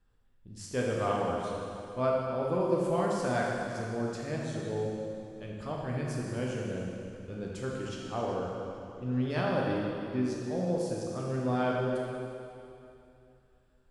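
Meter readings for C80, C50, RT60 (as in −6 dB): 0.5 dB, −1.0 dB, 2.7 s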